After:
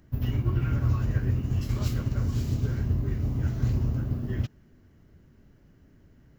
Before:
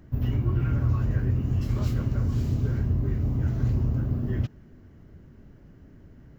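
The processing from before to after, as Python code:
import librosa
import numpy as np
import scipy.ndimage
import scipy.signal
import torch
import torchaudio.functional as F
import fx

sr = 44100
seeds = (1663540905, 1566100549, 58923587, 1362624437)

y = fx.high_shelf(x, sr, hz=2200.0, db=8.0)
y = fx.upward_expand(y, sr, threshold_db=-34.0, expansion=1.5)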